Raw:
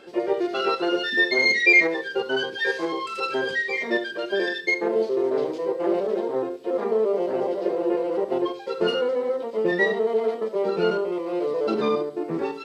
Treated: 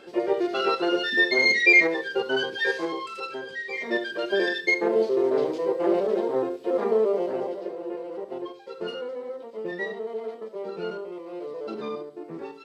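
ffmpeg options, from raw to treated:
-af "volume=12dB,afade=t=out:st=2.66:d=0.82:silence=0.266073,afade=t=in:st=3.48:d=0.75:silence=0.237137,afade=t=out:st=6.96:d=0.76:silence=0.298538"

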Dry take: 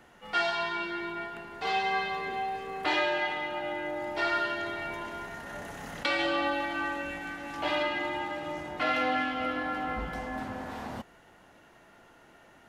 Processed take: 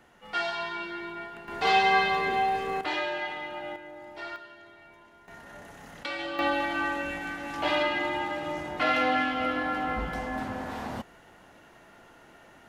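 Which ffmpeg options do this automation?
-af "asetnsamples=n=441:p=0,asendcmd='1.48 volume volume 7dB;2.81 volume volume -3dB;3.76 volume volume -10dB;4.36 volume volume -17dB;5.28 volume volume -6dB;6.39 volume volume 3dB',volume=-2dB"

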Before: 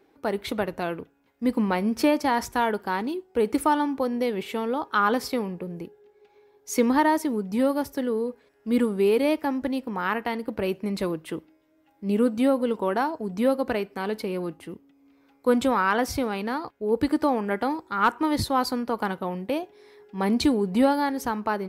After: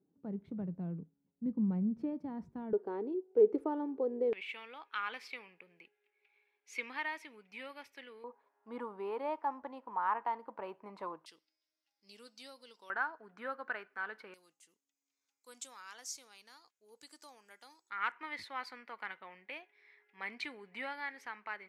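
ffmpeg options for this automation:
-af "asetnsamples=n=441:p=0,asendcmd='2.73 bandpass f 420;4.33 bandpass f 2400;8.24 bandpass f 970;11.26 bandpass f 5000;12.9 bandpass f 1500;14.34 bandpass f 6800;17.9 bandpass f 2100',bandpass=f=170:t=q:w=4.6:csg=0"

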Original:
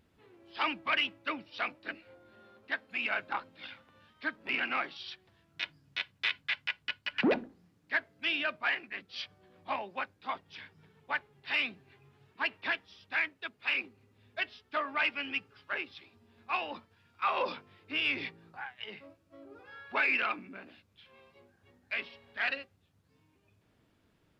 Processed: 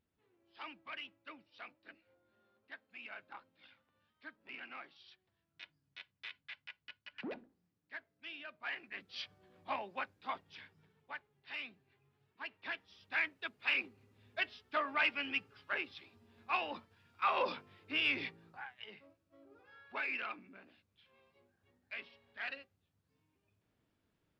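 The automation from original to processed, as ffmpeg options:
-af "volume=7dB,afade=t=in:st=8.53:d=0.53:silence=0.237137,afade=t=out:st=10.35:d=0.81:silence=0.354813,afade=t=in:st=12.53:d=0.84:silence=0.281838,afade=t=out:st=18.08:d=0.98:silence=0.398107"

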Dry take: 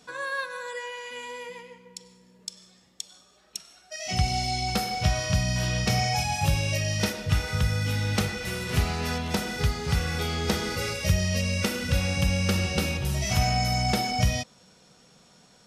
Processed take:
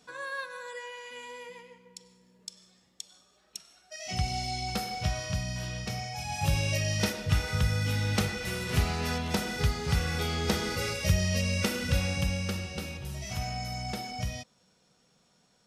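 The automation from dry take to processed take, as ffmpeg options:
-af "volume=5dB,afade=t=out:st=4.91:d=1.24:silence=0.446684,afade=t=in:st=6.15:d=0.42:silence=0.298538,afade=t=out:st=11.9:d=0.76:silence=0.375837"

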